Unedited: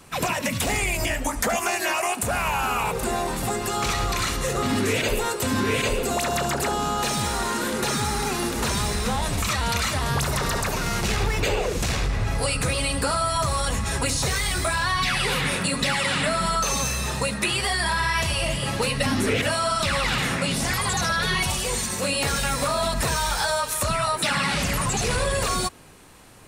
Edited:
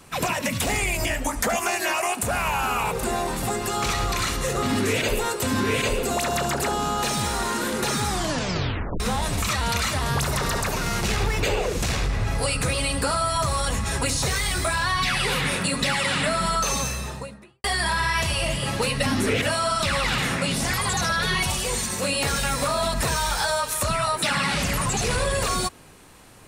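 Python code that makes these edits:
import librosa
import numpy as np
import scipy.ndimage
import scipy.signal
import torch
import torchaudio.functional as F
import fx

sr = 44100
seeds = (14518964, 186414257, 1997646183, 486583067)

y = fx.studio_fade_out(x, sr, start_s=16.69, length_s=0.95)
y = fx.edit(y, sr, fx.tape_stop(start_s=8.06, length_s=0.94), tone=tone)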